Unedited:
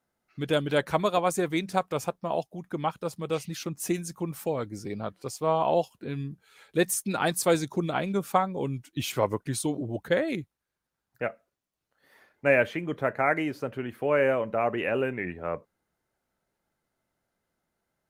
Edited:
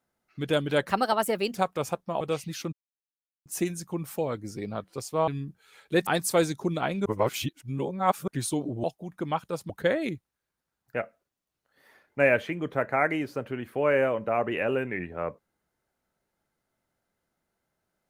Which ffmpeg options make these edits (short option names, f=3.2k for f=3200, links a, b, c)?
-filter_complex "[0:a]asplit=11[a][b][c][d][e][f][g][h][i][j][k];[a]atrim=end=0.894[l];[b]atrim=start=0.89:end=1.71,asetpts=PTS-STARTPTS,asetrate=54243,aresample=44100[m];[c]atrim=start=1.706:end=2.362[n];[d]atrim=start=3.218:end=3.74,asetpts=PTS-STARTPTS,afade=t=out:st=0.518:d=0.004:c=hsin,apad=pad_dur=0.73[o];[e]atrim=start=3.74:end=5.562,asetpts=PTS-STARTPTS,afade=t=in:d=0.004:c=hsin[p];[f]atrim=start=6.108:end=6.902[q];[g]atrim=start=7.188:end=8.182[r];[h]atrim=start=8.178:end=9.402,asetpts=PTS-STARTPTS,areverse[s];[i]atrim=start=9.398:end=9.962[t];[j]atrim=start=2.358:end=3.222[u];[k]atrim=start=9.958[v];[l][m]acrossfade=d=0.004:c1=hsin:c2=hsin[w];[w][n]acrossfade=d=0.004:c1=hsin:c2=hsin[x];[o][p]concat=n=2:v=0:a=1[y];[x][y]acrossfade=d=0.004:c1=hsin:c2=hsin[z];[z][q]acrossfade=d=0.004:c1=hsin:c2=hsin[aa];[aa][r]acrossfade=d=0.004:c1=hsin:c2=hsin[ab];[ab][s]acrossfade=d=0.004:c1=hsin:c2=hsin[ac];[ac][t]acrossfade=d=0.004:c1=hsin:c2=hsin[ad];[ad][u]acrossfade=d=0.004:c1=hsin:c2=hsin[ae];[ae][v]acrossfade=d=0.004:c1=hsin:c2=hsin"